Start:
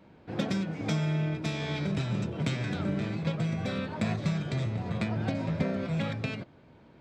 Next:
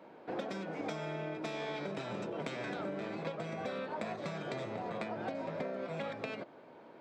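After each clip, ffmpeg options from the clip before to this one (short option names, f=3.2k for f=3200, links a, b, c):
-af "highpass=520,tiltshelf=f=1.3k:g=7,acompressor=threshold=-40dB:ratio=6,volume=4dB"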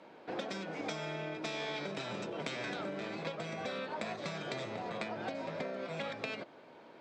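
-af "lowpass=7k,highshelf=f=2.5k:g=11,volume=-1.5dB"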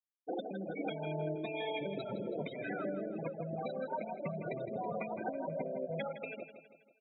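-af "afftfilt=real='re*gte(hypot(re,im),0.0316)':imag='im*gte(hypot(re,im),0.0316)':win_size=1024:overlap=0.75,alimiter=level_in=8dB:limit=-24dB:level=0:latency=1:release=264,volume=-8dB,aecho=1:1:162|324|486|648|810:0.282|0.135|0.0649|0.0312|0.015,volume=4dB"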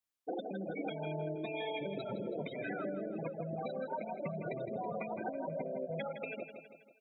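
-af "acompressor=threshold=-44dB:ratio=2,volume=4.5dB"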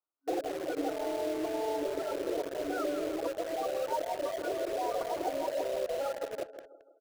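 -filter_complex "[0:a]afftfilt=real='re*between(b*sr/4096,270,1500)':imag='im*between(b*sr/4096,270,1500)':win_size=4096:overlap=0.75,asplit=2[a][b];[b]acrusher=bits=6:mix=0:aa=0.000001,volume=-3dB[c];[a][c]amix=inputs=2:normalize=0,asplit=2[d][e];[e]adelay=220,highpass=300,lowpass=3.4k,asoftclip=type=hard:threshold=-39dB,volume=-13dB[f];[d][f]amix=inputs=2:normalize=0,volume=2dB"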